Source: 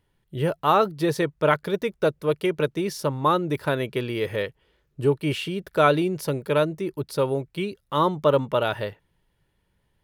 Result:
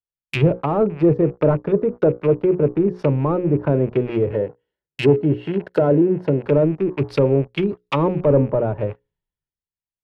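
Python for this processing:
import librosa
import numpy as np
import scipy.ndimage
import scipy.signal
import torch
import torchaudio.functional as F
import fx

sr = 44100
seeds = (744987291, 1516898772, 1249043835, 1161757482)

y = fx.rattle_buzz(x, sr, strikes_db=-40.0, level_db=-22.0)
y = fx.hum_notches(y, sr, base_hz=60, count=9)
y = fx.leveller(y, sr, passes=3)
y = fx.notch_comb(y, sr, f0_hz=1200.0, at=(4.31, 6.45))
y = fx.env_lowpass_down(y, sr, base_hz=500.0, full_db=-13.0)
y = fx.band_widen(y, sr, depth_pct=70)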